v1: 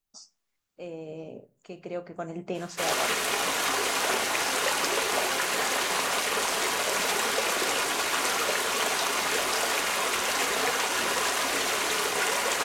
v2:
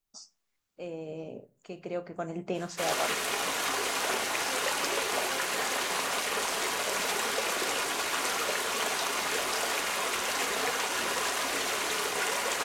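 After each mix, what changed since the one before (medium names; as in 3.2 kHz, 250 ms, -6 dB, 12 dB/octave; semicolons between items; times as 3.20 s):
background -3.5 dB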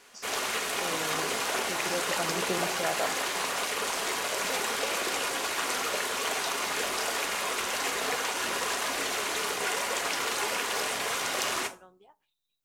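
background: entry -2.55 s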